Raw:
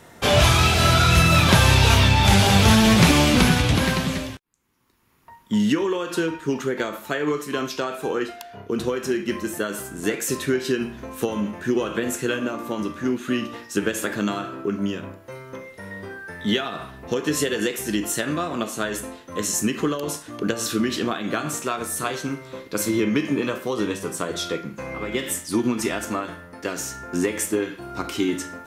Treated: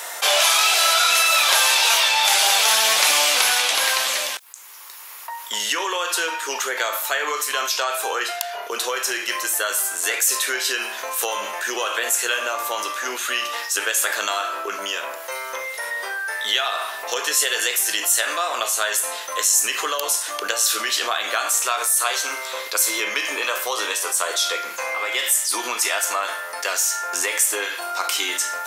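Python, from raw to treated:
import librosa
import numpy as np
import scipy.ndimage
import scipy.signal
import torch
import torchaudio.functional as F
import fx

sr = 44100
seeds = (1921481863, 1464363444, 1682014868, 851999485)

y = scipy.signal.sosfilt(scipy.signal.butter(4, 620.0, 'highpass', fs=sr, output='sos'), x)
y = fx.high_shelf(y, sr, hz=4000.0, db=11.0)
y = fx.env_flatten(y, sr, amount_pct=50)
y = y * librosa.db_to_amplitude(-2.0)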